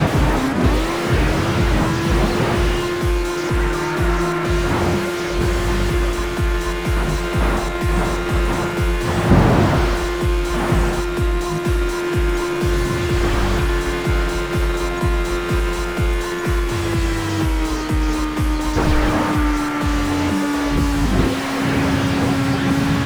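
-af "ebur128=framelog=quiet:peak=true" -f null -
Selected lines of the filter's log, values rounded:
Integrated loudness:
  I:         -19.3 LUFS
  Threshold: -29.3 LUFS
Loudness range:
  LRA:         2.6 LU
  Threshold: -39.4 LUFS
  LRA low:   -20.7 LUFS
  LRA high:  -18.1 LUFS
True peak:
  Peak:       -1.2 dBFS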